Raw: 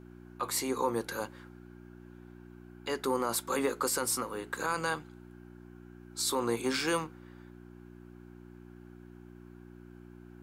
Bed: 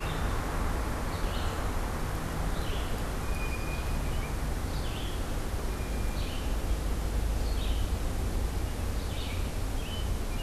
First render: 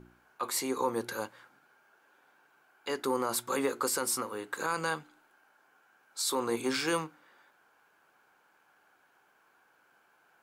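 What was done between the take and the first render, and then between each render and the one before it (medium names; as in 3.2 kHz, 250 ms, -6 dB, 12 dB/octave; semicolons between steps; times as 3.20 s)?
de-hum 60 Hz, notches 6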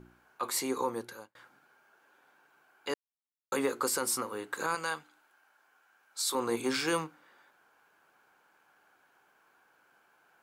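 0.74–1.35 s: fade out; 2.94–3.52 s: mute; 4.75–6.35 s: bass shelf 490 Hz -10 dB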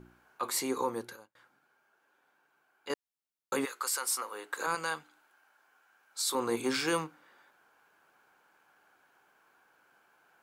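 1.16–2.90 s: gain -6.5 dB; 3.64–4.66 s: high-pass 1.5 kHz -> 370 Hz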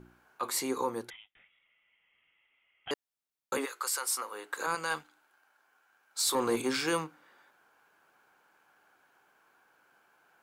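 1.10–2.91 s: frequency inversion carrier 3.6 kHz; 3.57–4.17 s: high-pass 290 Hz 24 dB/octave; 4.90–6.62 s: waveshaping leveller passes 1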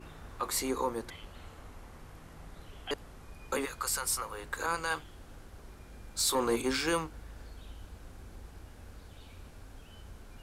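add bed -17.5 dB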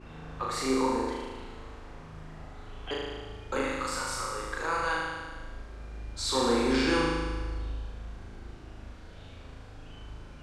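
distance through air 93 m; flutter echo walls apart 6.5 m, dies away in 1.5 s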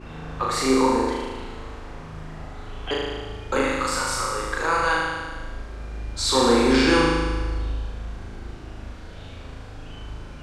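trim +8 dB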